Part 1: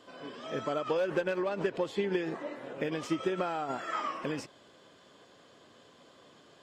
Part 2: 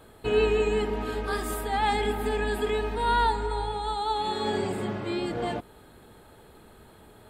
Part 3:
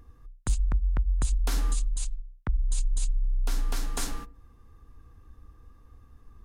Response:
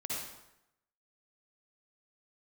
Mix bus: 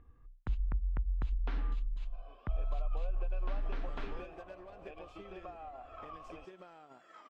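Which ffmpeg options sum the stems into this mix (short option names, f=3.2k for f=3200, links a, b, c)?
-filter_complex "[0:a]aeval=exprs='0.112*(cos(1*acos(clip(val(0)/0.112,-1,1)))-cos(1*PI/2))+0.00355*(cos(7*acos(clip(val(0)/0.112,-1,1)))-cos(7*PI/2))':c=same,adelay=2050,volume=-0.5dB,asplit=2[a][b];[b]volume=-20.5dB[c];[2:a]lowpass=f=2.9k:w=0.5412,lowpass=f=2.9k:w=1.3066,volume=-8dB[d];[a]asplit=3[e][f][g];[e]bandpass=f=730:t=q:w=8,volume=0dB[h];[f]bandpass=f=1.09k:t=q:w=8,volume=-6dB[i];[g]bandpass=f=2.44k:t=q:w=8,volume=-9dB[j];[h][i][j]amix=inputs=3:normalize=0,acompressor=threshold=-45dB:ratio=5,volume=0dB[k];[c]aecho=0:1:1161:1[l];[d][k][l]amix=inputs=3:normalize=0"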